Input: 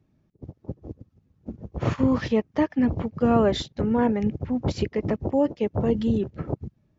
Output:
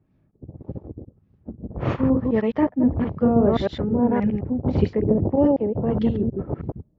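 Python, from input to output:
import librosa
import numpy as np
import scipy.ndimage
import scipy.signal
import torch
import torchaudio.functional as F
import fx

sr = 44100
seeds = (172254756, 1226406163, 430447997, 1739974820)

y = fx.reverse_delay(x, sr, ms=105, wet_db=-1.5)
y = fx.tilt_shelf(y, sr, db=4.5, hz=970.0, at=(4.75, 5.6))
y = fx.filter_lfo_lowpass(y, sr, shape='sine', hz=1.7, low_hz=540.0, high_hz=3400.0, q=0.83)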